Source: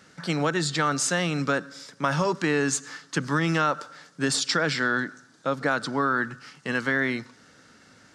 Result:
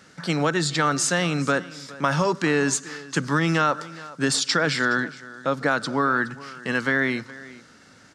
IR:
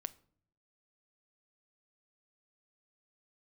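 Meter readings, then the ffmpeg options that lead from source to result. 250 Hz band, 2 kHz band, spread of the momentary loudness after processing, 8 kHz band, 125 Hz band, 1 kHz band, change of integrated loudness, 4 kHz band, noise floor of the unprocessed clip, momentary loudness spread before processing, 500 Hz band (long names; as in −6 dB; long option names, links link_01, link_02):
+2.5 dB, +2.5 dB, 10 LU, +2.5 dB, +2.5 dB, +2.5 dB, +2.5 dB, +2.5 dB, −56 dBFS, 10 LU, +2.5 dB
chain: -af "aecho=1:1:418:0.112,volume=2.5dB"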